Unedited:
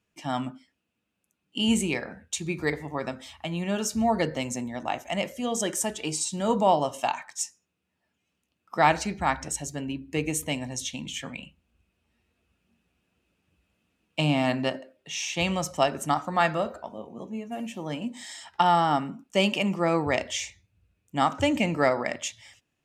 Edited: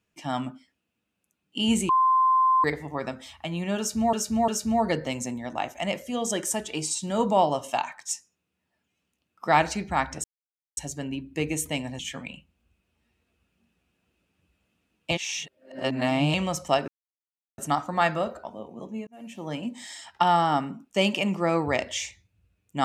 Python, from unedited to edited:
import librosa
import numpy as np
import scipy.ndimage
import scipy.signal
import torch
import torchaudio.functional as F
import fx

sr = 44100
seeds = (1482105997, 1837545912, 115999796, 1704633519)

y = fx.edit(x, sr, fx.bleep(start_s=1.89, length_s=0.75, hz=1040.0, db=-17.0),
    fx.repeat(start_s=3.78, length_s=0.35, count=3),
    fx.insert_silence(at_s=9.54, length_s=0.53),
    fx.cut(start_s=10.76, length_s=0.32),
    fx.reverse_span(start_s=14.2, length_s=1.23),
    fx.insert_silence(at_s=15.97, length_s=0.7),
    fx.fade_in_span(start_s=17.46, length_s=0.41), tone=tone)